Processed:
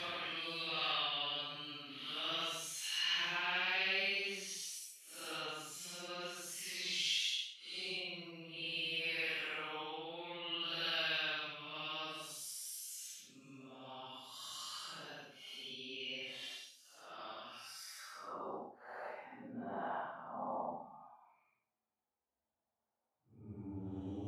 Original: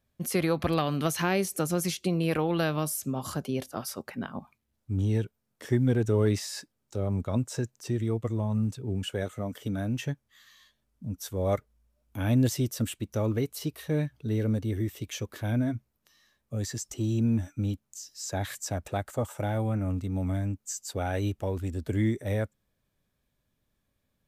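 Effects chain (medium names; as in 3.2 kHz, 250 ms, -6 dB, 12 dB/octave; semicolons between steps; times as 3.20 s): Paulstretch 5.5×, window 0.10 s, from 0.63 s; band-pass sweep 3.1 kHz -> 800 Hz, 17.48–18.65 s; trim +3 dB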